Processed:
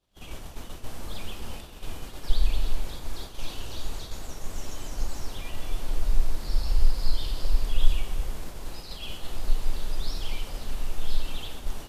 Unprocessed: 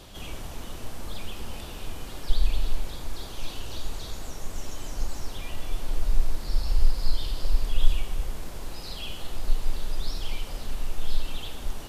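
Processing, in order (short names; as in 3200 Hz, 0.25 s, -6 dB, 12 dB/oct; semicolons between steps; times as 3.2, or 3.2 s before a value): expander -30 dBFS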